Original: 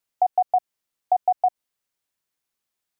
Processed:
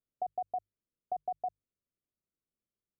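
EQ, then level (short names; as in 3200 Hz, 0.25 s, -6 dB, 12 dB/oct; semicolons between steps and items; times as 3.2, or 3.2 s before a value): running mean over 51 samples; air absorption 490 m; notches 50/100/150 Hz; +1.5 dB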